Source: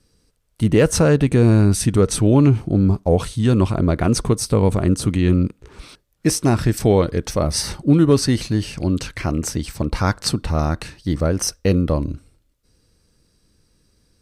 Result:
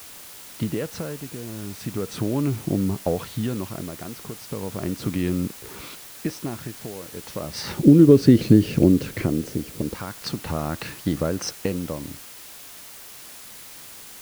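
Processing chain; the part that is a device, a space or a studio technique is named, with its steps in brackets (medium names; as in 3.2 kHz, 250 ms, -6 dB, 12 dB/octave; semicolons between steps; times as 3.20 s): medium wave at night (band-pass 130–3900 Hz; compression, threshold -24 dBFS, peak gain reduction 14 dB; tremolo 0.36 Hz, depth 79%; whistle 10 kHz -59 dBFS; white noise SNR 13 dB); 7.77–9.94 s: resonant low shelf 600 Hz +9.5 dB, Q 1.5; trim +4.5 dB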